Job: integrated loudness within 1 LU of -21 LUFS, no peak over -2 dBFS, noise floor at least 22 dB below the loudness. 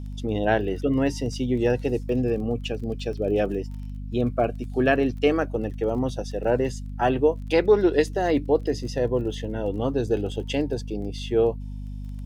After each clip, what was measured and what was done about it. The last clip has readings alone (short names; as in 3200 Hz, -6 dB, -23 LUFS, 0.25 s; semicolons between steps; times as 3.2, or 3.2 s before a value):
ticks 23/s; hum 50 Hz; harmonics up to 250 Hz; hum level -31 dBFS; loudness -25.0 LUFS; peak -7.0 dBFS; loudness target -21.0 LUFS
-> de-click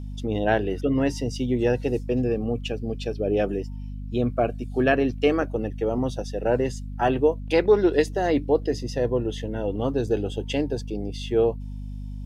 ticks 0/s; hum 50 Hz; harmonics up to 250 Hz; hum level -31 dBFS
-> notches 50/100/150/200/250 Hz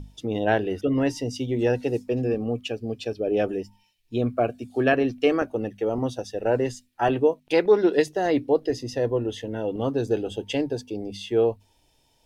hum none; loudness -25.0 LUFS; peak -7.0 dBFS; loudness target -21.0 LUFS
-> gain +4 dB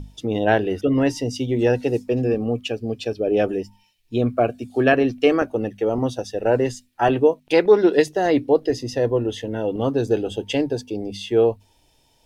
loudness -21.0 LUFS; peak -3.0 dBFS; noise floor -61 dBFS